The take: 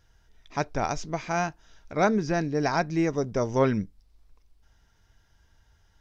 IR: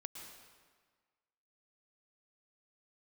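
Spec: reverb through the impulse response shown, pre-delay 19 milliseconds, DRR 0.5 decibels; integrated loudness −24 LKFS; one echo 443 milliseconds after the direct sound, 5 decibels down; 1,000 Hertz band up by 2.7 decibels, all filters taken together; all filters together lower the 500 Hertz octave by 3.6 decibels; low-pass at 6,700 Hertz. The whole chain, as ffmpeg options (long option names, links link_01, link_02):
-filter_complex "[0:a]lowpass=6700,equalizer=frequency=500:width_type=o:gain=-7,equalizer=frequency=1000:width_type=o:gain=6.5,aecho=1:1:443:0.562,asplit=2[link_01][link_02];[1:a]atrim=start_sample=2205,adelay=19[link_03];[link_02][link_03]afir=irnorm=-1:irlink=0,volume=3dB[link_04];[link_01][link_04]amix=inputs=2:normalize=0,volume=0.5dB"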